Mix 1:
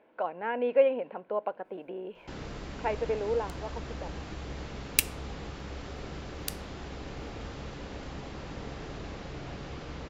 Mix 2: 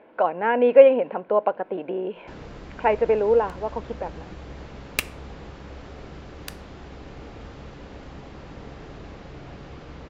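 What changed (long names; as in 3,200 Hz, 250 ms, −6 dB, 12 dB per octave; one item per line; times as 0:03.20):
speech +11.0 dB
second sound: add parametric band 860 Hz +13 dB 2.9 octaves
master: add high-shelf EQ 3,600 Hz −7 dB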